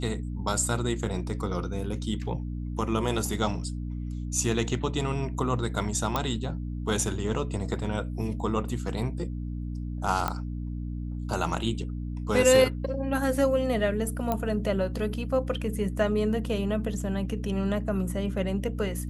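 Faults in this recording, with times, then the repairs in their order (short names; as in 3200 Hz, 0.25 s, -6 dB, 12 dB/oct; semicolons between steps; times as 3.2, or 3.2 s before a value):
hum 60 Hz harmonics 5 -33 dBFS
6.16 pop -12 dBFS
10.28 pop -13 dBFS
14.32 pop -14 dBFS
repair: de-click; de-hum 60 Hz, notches 5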